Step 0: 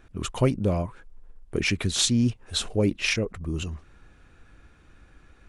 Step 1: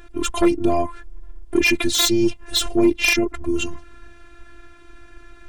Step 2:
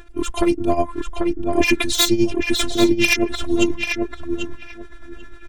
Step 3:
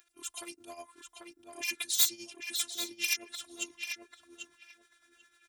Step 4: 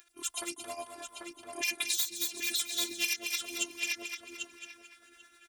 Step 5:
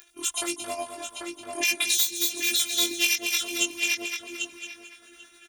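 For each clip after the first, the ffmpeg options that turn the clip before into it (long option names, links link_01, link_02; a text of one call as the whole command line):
ffmpeg -i in.wav -af "afftfilt=real='hypot(re,im)*cos(PI*b)':imag='0':win_size=512:overlap=0.75,aeval=exprs='0.422*sin(PI/2*2.82*val(0)/0.422)':channel_layout=same" out.wav
ffmpeg -i in.wav -filter_complex "[0:a]tremolo=f=9.9:d=0.71,asplit=2[link_01][link_02];[link_02]adelay=790,lowpass=frequency=2800:poles=1,volume=-3.5dB,asplit=2[link_03][link_04];[link_04]adelay=790,lowpass=frequency=2800:poles=1,volume=0.19,asplit=2[link_05][link_06];[link_06]adelay=790,lowpass=frequency=2800:poles=1,volume=0.19[link_07];[link_03][link_05][link_07]amix=inputs=3:normalize=0[link_08];[link_01][link_08]amix=inputs=2:normalize=0,volume=3.5dB" out.wav
ffmpeg -i in.wav -af "aderivative,volume=-6dB" out.wav
ffmpeg -i in.wav -filter_complex "[0:a]asplit=2[link_01][link_02];[link_02]aecho=0:1:222|444|666|888:0.398|0.139|0.0488|0.0171[link_03];[link_01][link_03]amix=inputs=2:normalize=0,acompressor=threshold=-32dB:ratio=12,volume=5.5dB" out.wav
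ffmpeg -i in.wav -filter_complex "[0:a]asplit=2[link_01][link_02];[link_02]adelay=20,volume=-3dB[link_03];[link_01][link_03]amix=inputs=2:normalize=0,volume=6dB" out.wav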